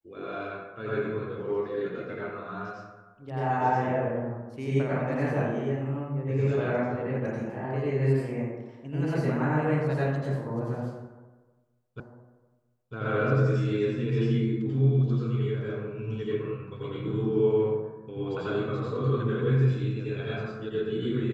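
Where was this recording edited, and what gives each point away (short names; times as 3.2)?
12 repeat of the last 0.95 s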